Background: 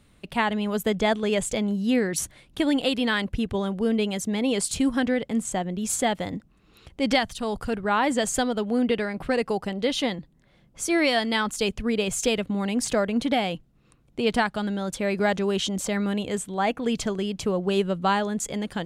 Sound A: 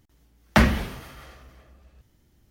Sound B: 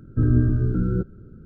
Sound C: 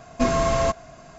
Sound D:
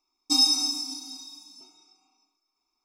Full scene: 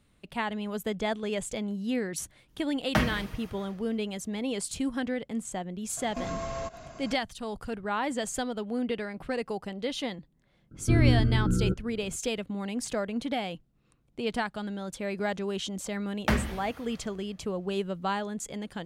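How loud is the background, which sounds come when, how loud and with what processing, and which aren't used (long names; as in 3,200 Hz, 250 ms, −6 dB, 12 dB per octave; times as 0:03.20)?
background −7.5 dB
0:02.39: mix in A −8.5 dB + comb filter 6.4 ms, depth 56%
0:05.97: mix in C −1.5 dB + downward compressor, threshold −30 dBFS
0:10.71: mix in B −3.5 dB
0:15.72: mix in A −8.5 dB
not used: D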